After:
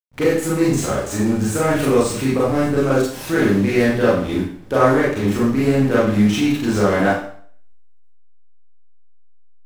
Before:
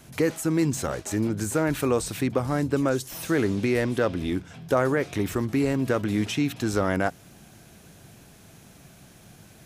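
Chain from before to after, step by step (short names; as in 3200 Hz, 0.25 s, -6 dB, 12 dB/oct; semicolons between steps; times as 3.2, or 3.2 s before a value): thin delay 0.29 s, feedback 74%, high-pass 4600 Hz, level -17 dB; backlash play -31.5 dBFS; Schroeder reverb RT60 0.53 s, combs from 30 ms, DRR -8 dB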